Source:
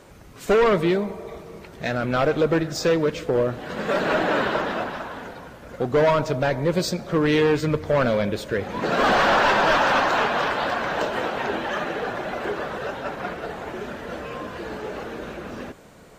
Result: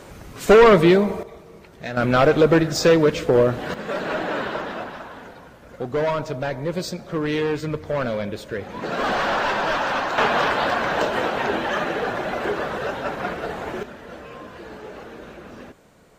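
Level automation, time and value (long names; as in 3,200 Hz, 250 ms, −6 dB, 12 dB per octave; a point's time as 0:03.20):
+6.5 dB
from 0:01.23 −4.5 dB
from 0:01.97 +5 dB
from 0:03.74 −4 dB
from 0:10.18 +3 dB
from 0:13.83 −5.5 dB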